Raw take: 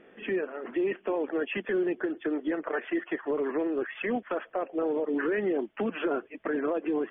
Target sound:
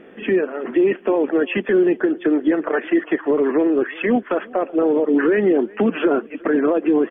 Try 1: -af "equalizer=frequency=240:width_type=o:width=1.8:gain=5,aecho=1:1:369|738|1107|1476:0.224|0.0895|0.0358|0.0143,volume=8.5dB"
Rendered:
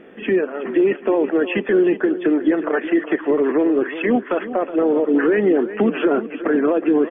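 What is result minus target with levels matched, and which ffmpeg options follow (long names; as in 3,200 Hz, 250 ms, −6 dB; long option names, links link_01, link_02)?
echo-to-direct +11 dB
-af "equalizer=frequency=240:width_type=o:width=1.8:gain=5,aecho=1:1:369|738|1107:0.0631|0.0252|0.0101,volume=8.5dB"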